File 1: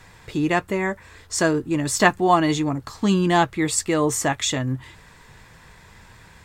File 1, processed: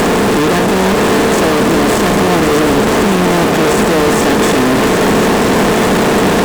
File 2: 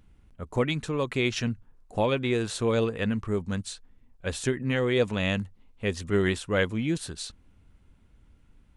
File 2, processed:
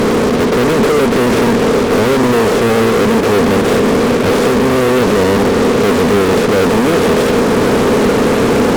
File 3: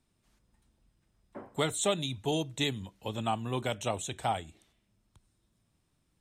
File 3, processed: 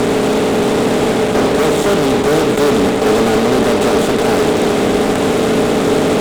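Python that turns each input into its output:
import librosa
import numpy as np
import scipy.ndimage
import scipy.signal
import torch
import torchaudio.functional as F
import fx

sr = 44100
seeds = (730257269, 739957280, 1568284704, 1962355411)

p1 = fx.bin_compress(x, sr, power=0.2)
p2 = fx.high_shelf(p1, sr, hz=4600.0, db=-6.0)
p3 = fx.rider(p2, sr, range_db=10, speed_s=0.5)
p4 = p2 + (p3 * 10.0 ** (3.0 / 20.0))
p5 = fx.small_body(p4, sr, hz=(250.0, 420.0), ring_ms=30, db=18)
p6 = fx.fuzz(p5, sr, gain_db=14.0, gate_db=-17.0)
p7 = p6 + fx.echo_single(p6, sr, ms=759, db=-8.5, dry=0)
y = p7 * 10.0 ** (3.0 / 20.0)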